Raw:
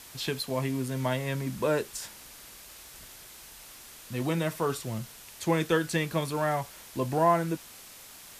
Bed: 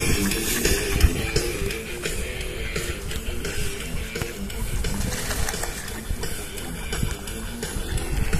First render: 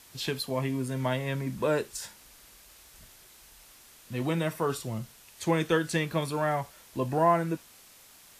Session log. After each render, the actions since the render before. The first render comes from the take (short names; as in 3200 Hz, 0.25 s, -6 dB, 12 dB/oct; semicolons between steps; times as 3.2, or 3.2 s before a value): noise print and reduce 6 dB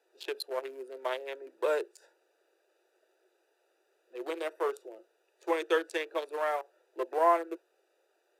Wiener smoothing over 41 samples; Chebyshev high-pass 350 Hz, order 6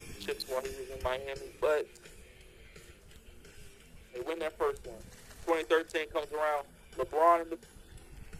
add bed -25.5 dB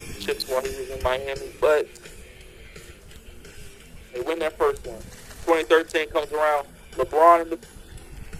gain +10 dB